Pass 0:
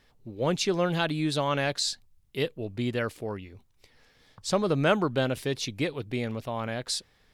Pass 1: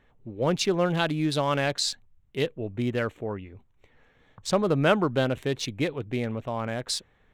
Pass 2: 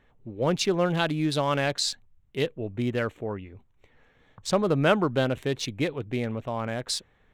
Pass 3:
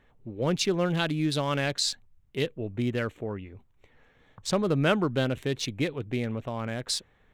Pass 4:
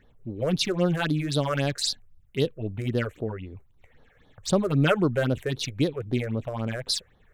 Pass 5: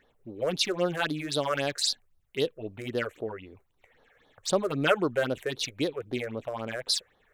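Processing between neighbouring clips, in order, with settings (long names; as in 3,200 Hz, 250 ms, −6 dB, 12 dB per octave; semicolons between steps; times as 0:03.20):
adaptive Wiener filter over 9 samples; level +2 dB
no processing that can be heard
dynamic equaliser 800 Hz, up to −5 dB, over −36 dBFS, Q 0.83
all-pass phaser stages 6, 3.8 Hz, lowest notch 220–2,400 Hz; level +4 dB
bass and treble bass −14 dB, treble 0 dB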